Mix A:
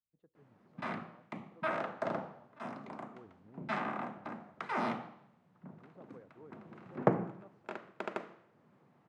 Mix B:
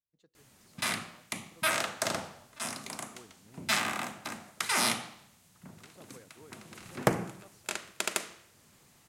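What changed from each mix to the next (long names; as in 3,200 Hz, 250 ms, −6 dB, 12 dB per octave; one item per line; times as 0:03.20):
background: remove high-pass filter 130 Hz 24 dB per octave
master: remove low-pass filter 1,100 Hz 12 dB per octave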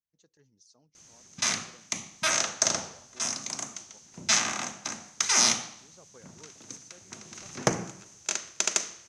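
background: entry +0.60 s
master: add low-pass with resonance 6,200 Hz, resonance Q 8.4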